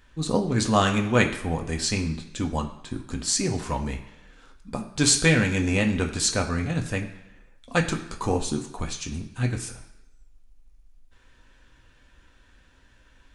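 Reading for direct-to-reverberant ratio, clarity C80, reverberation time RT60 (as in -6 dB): 1.5 dB, 12.5 dB, 1.0 s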